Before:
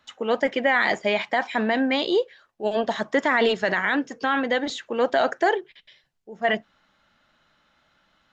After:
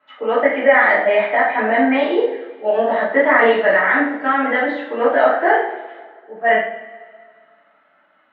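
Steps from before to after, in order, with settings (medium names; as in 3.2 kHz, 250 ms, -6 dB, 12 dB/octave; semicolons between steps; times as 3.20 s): cabinet simulation 290–2500 Hz, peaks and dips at 300 Hz +5 dB, 630 Hz +8 dB, 920 Hz +3 dB, 1.3 kHz +5 dB, 2 kHz +4 dB; two-slope reverb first 0.55 s, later 2 s, from -18 dB, DRR -10 dB; trim -6 dB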